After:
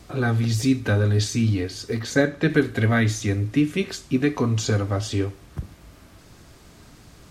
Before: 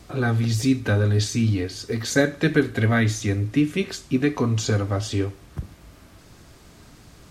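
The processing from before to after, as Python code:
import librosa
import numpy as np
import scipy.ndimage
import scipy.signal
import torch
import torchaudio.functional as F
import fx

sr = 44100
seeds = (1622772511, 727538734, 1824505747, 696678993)

y = fx.high_shelf(x, sr, hz=4600.0, db=-8.0, at=(1.99, 2.5))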